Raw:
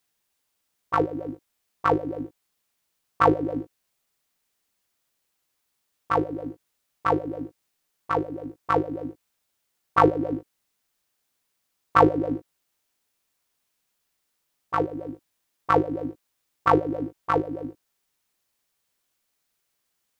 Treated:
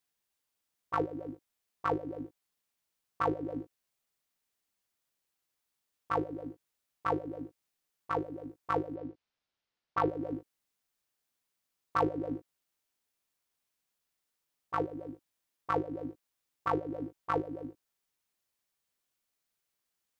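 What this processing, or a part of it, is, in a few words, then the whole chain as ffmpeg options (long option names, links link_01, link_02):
clipper into limiter: -filter_complex "[0:a]asettb=1/sr,asplit=3[link_01][link_02][link_03];[link_01]atrim=end=8.954[link_04];[link_02]atrim=start=8.95:end=10.08,asetpts=PTS-STARTPTS,afade=type=in:duration=0.004:curve=qsin,afade=type=out:start_time=1.126:duration=0.004:curve=qsin,lowpass=frequency=5200:width=0.5412,lowpass=frequency=5200:width=1.3066[link_05];[link_03]atrim=start=10.076[link_06];[link_04][link_05]acrossfade=duration=0.004:curve1=hsin:curve2=qsin[link_07];[link_07][link_06]acrossfade=duration=0.004:curve1=qsin:curve2=hsin,asoftclip=type=hard:threshold=-5dB,alimiter=limit=-9.5dB:level=0:latency=1:release=367,volume=-8dB"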